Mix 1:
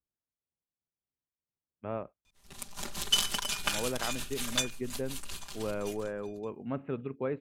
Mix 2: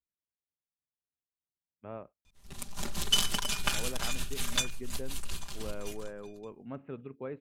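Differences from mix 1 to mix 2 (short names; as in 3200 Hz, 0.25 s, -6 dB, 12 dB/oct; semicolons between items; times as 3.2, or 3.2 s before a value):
speech -6.5 dB; background: add low shelf 240 Hz +8.5 dB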